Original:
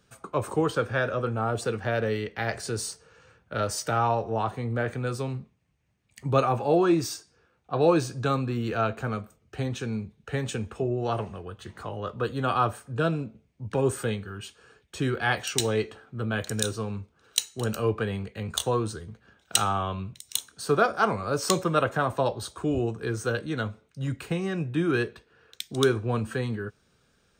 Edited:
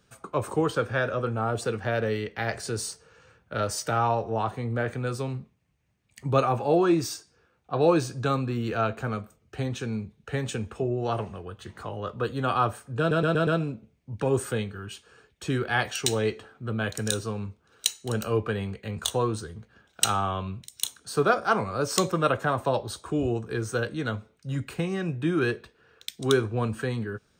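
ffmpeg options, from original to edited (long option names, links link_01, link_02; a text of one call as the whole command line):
ffmpeg -i in.wav -filter_complex "[0:a]asplit=5[link_01][link_02][link_03][link_04][link_05];[link_01]atrim=end=13.112[link_06];[link_02]atrim=start=12.988:end=13.112[link_07];[link_03]atrim=start=12.988:end=13.112[link_08];[link_04]atrim=start=12.988:end=13.112[link_09];[link_05]atrim=start=12.988[link_10];[link_06][link_07]acrossfade=duration=0.004:curve1=hsin:curve2=hsin[link_11];[link_11][link_08]acrossfade=duration=0.004:curve1=hsin:curve2=hsin[link_12];[link_12][link_09]acrossfade=duration=0.004:curve1=hsin:curve2=hsin[link_13];[link_13][link_10]acrossfade=duration=0.004:curve1=hsin:curve2=hsin" out.wav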